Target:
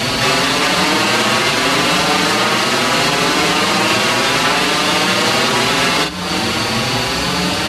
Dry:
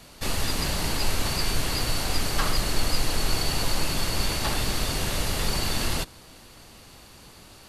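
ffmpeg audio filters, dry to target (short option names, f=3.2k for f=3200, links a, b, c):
-filter_complex "[0:a]aemphasis=mode=production:type=75fm,afftfilt=real='re*lt(hypot(re,im),0.158)':imag='im*lt(hypot(re,im),0.158)':win_size=1024:overlap=0.75,adynamicequalizer=threshold=0.00398:dfrequency=1200:dqfactor=2.9:tfrequency=1200:tqfactor=2.9:attack=5:release=100:ratio=0.375:range=1.5:mode=boostabove:tftype=bell,acompressor=threshold=-40dB:ratio=4,aeval=exprs='0.168*sin(PI/2*3.98*val(0)/0.168)':c=same,aeval=exprs='val(0)+0.00708*(sin(2*PI*60*n/s)+sin(2*PI*2*60*n/s)/2+sin(2*PI*3*60*n/s)/3+sin(2*PI*4*60*n/s)/4+sin(2*PI*5*60*n/s)/5)':c=same,highpass=130,lowpass=2.9k,asplit=2[a][b];[b]adelay=44,volume=-6dB[c];[a][c]amix=inputs=2:normalize=0,alimiter=level_in=23dB:limit=-1dB:release=50:level=0:latency=1,asplit=2[d][e];[e]adelay=5.8,afreqshift=0.74[f];[d][f]amix=inputs=2:normalize=1,volume=-1dB"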